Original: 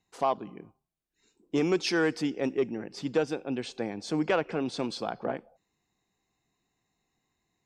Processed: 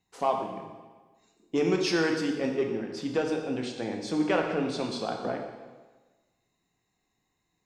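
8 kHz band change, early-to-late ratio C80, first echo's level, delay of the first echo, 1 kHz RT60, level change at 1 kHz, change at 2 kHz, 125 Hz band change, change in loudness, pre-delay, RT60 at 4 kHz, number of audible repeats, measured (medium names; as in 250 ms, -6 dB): +1.0 dB, 6.5 dB, no echo, no echo, 1.3 s, +1.5 dB, +1.0 dB, +1.0 dB, +1.0 dB, 4 ms, 1.2 s, no echo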